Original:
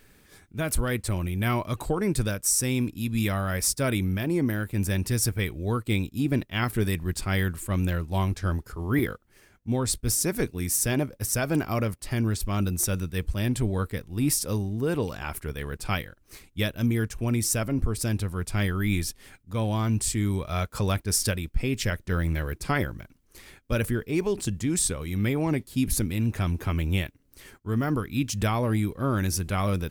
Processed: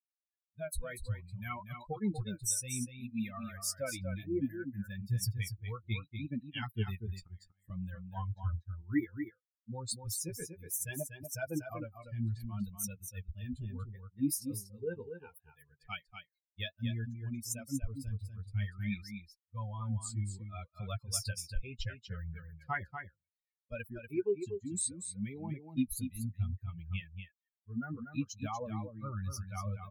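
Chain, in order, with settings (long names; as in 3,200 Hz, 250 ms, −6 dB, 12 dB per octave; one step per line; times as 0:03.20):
spectral dynamics exaggerated over time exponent 3
0:07.21–0:07.70: gate with flip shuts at −43 dBFS, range −37 dB
flanger 0.63 Hz, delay 3.7 ms, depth 9 ms, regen +17%
0:14.14–0:14.70: double-tracking delay 15 ms −5.5 dB
on a send: single-tap delay 240 ms −8 dB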